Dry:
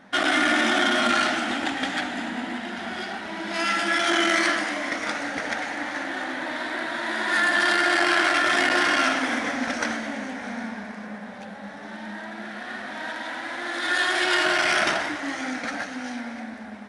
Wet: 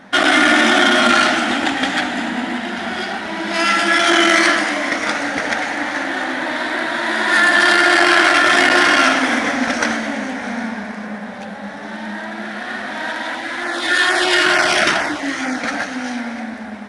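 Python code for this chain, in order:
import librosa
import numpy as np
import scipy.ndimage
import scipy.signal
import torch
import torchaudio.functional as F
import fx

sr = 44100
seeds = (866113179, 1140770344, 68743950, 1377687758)

y = fx.filter_lfo_notch(x, sr, shape='saw_down', hz=2.2, low_hz=430.0, high_hz=4200.0, q=2.2, at=(13.35, 15.59), fade=0.02)
y = y * librosa.db_to_amplitude(8.5)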